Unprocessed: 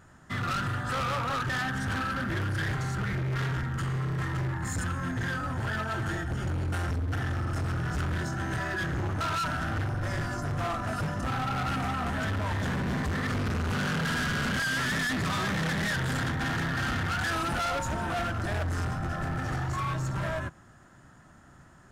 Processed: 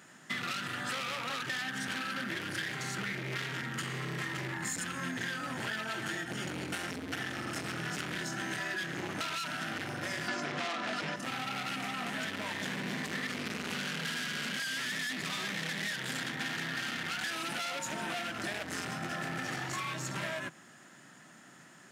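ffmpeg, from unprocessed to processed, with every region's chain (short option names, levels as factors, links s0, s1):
-filter_complex "[0:a]asettb=1/sr,asplit=3[s0][s1][s2];[s0]atrim=end=10.284[s3];[s1]atrim=start=10.28:end=11.16,asetpts=PTS-STARTPTS,afade=t=in:d=0.004:c=qsin,afade=t=out:st=0.876:d=0.004:c=qsin,acrossover=split=170 6000:gain=0.2 1 0.0891[s4][s5][s6];[s4][s5][s6]amix=inputs=3:normalize=0,aeval=exprs='0.0944*sin(PI/2*2.24*val(0)/0.0944)':c=same[s7];[s2]atrim=start=11.156[s8];[s3][s7]acrossfade=d=0.004:c1=hsin:c2=qsin[s9];[s9][s8]acrossfade=d=0.004:c1=qsin:c2=hsin,highpass=f=170:w=0.5412,highpass=f=170:w=1.3066,highshelf=f=1700:t=q:w=1.5:g=7,acompressor=threshold=0.0224:ratio=6"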